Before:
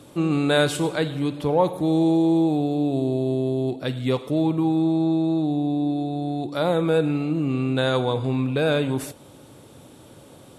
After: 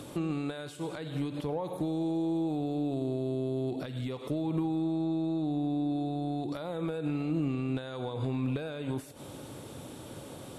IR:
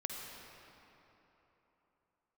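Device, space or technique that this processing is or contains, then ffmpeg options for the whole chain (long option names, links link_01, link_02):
de-esser from a sidechain: -filter_complex "[0:a]asplit=2[link_01][link_02];[link_02]highpass=frequency=6800:poles=1,apad=whole_len=466700[link_03];[link_01][link_03]sidechaincompress=threshold=-60dB:ratio=6:attack=2.4:release=86,volume=7.5dB"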